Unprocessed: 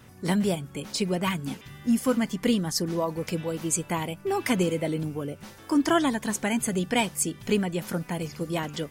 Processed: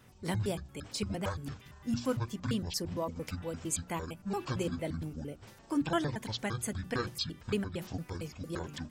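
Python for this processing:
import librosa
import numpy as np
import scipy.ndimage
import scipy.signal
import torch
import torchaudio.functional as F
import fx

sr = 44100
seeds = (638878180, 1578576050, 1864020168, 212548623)

y = fx.pitch_trill(x, sr, semitones=-11.5, every_ms=114)
y = fx.hum_notches(y, sr, base_hz=60, count=6)
y = y * librosa.db_to_amplitude(-7.5)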